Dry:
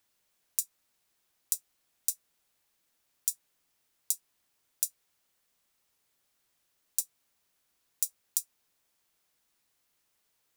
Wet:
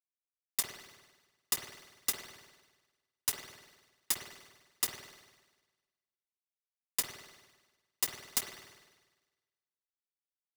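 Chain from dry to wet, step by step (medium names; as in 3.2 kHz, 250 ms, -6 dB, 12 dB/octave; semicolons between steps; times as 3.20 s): transient shaper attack +2 dB, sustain +6 dB; fuzz box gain 29 dB, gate -33 dBFS; reverberation RT60 1.3 s, pre-delay 50 ms, DRR -3 dB; polarity switched at an audio rate 2 kHz; trim -7.5 dB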